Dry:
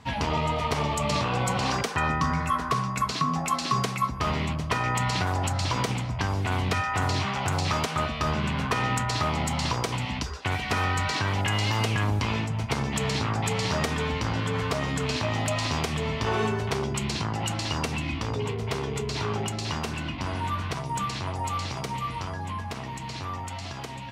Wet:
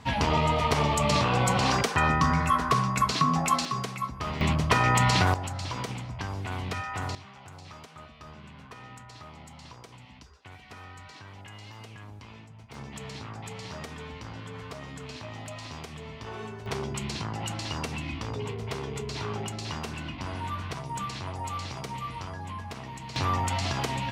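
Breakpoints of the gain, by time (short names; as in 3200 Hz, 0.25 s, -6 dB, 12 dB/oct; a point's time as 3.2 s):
+2 dB
from 3.65 s -6 dB
from 4.41 s +4 dB
from 5.34 s -7 dB
from 7.15 s -20 dB
from 12.74 s -13 dB
from 16.66 s -4.5 dB
from 23.16 s +7 dB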